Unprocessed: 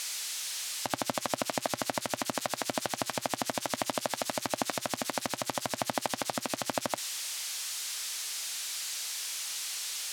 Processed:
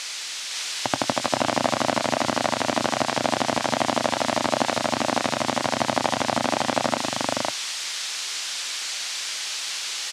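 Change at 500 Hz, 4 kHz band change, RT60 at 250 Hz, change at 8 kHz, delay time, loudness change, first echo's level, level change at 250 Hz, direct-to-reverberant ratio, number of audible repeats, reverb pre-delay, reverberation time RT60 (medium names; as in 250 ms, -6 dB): +10.5 dB, +8.5 dB, no reverb, +4.0 dB, 102 ms, +8.5 dB, -13.5 dB, +11.0 dB, no reverb, 4, no reverb, no reverb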